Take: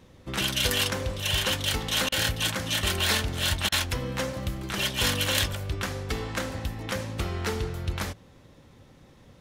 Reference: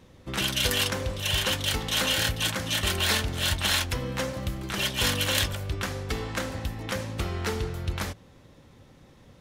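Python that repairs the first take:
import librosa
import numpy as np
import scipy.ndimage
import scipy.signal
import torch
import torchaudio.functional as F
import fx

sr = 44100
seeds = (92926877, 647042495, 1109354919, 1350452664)

y = fx.fix_interpolate(x, sr, at_s=(2.09, 3.69), length_ms=30.0)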